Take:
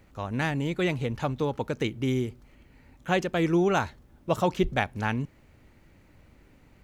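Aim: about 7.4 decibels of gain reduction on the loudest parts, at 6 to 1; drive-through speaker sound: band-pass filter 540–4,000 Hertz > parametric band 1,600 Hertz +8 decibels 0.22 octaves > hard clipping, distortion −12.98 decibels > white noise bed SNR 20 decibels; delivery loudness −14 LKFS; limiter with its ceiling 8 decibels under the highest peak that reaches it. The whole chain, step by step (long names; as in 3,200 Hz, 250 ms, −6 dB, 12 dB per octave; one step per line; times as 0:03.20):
downward compressor 6 to 1, threshold −27 dBFS
brickwall limiter −23.5 dBFS
band-pass filter 540–4,000 Hz
parametric band 1,600 Hz +8 dB 0.22 octaves
hard clipping −30.5 dBFS
white noise bed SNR 20 dB
level +26.5 dB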